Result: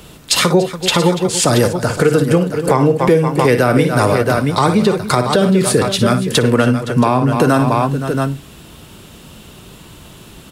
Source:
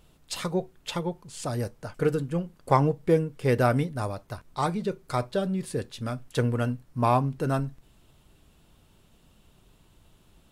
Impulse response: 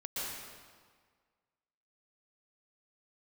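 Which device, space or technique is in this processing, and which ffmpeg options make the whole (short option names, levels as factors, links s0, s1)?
mastering chain: -filter_complex "[0:a]highpass=f=120:p=1,asettb=1/sr,asplit=3[s0][s1][s2];[s0]atrim=end=6.544[s3];[s1]atrim=start=6.54:end=7.23,asetpts=PTS-STARTPTS,afade=t=in:d=0.004:c=qsin,afade=t=out:st=0.686:d=0.004:c=qsin,lowpass=11000[s4];[s2]atrim=start=7.226[s5];[s3][s4]acrossfade=d=0.004:c1=hsin:c2=qsin[s6];[s6][s5]acrossfade=d=0.004:c1=qsin:c2=hsin,equalizer=f=750:t=o:w=0.81:g=-3.5,aecho=1:1:56|285|516|675:0.266|0.126|0.119|0.237,acrossover=split=220|450[s7][s8][s9];[s7]acompressor=threshold=0.0126:ratio=4[s10];[s8]acompressor=threshold=0.02:ratio=4[s11];[s9]acompressor=threshold=0.0316:ratio=4[s12];[s10][s11][s12]amix=inputs=3:normalize=0,acompressor=threshold=0.0251:ratio=2.5,alimiter=level_in=16.8:limit=0.891:release=50:level=0:latency=1,volume=0.891"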